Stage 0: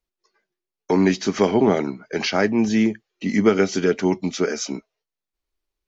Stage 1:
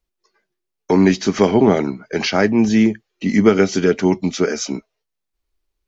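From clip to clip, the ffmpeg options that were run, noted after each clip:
-af "lowshelf=f=140:g=6,volume=1.41"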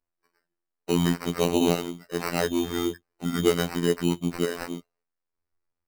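-af "acrusher=samples=13:mix=1:aa=0.000001,afftfilt=real='hypot(re,im)*cos(PI*b)':imag='0':win_size=2048:overlap=0.75,volume=0.531"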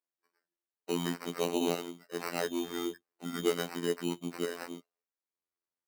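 -af "highpass=240,volume=0.447"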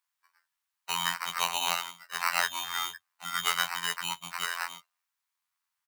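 -af "firequalizer=gain_entry='entry(120,0);entry(240,-23);entry(360,-27);entry(640,-3);entry(960,12);entry(5000,9)':delay=0.05:min_phase=1"

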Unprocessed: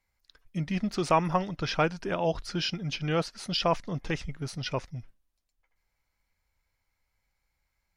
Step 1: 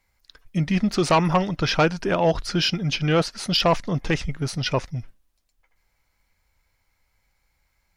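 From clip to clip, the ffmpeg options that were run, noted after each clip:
-af "aeval=exprs='0.266*sin(PI/2*1.78*val(0)/0.266)':c=same"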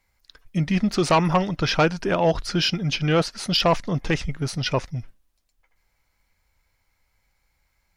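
-af anull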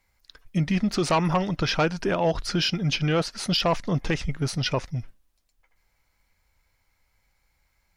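-af "alimiter=limit=0.168:level=0:latency=1:release=146"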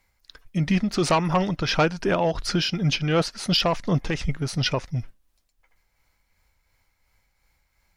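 -af "tremolo=f=2.8:d=0.4,volume=1.41"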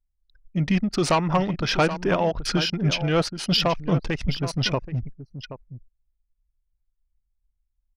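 -filter_complex "[0:a]asplit=2[s0][s1];[s1]aecho=0:1:777:0.266[s2];[s0][s2]amix=inputs=2:normalize=0,anlmdn=15.8"

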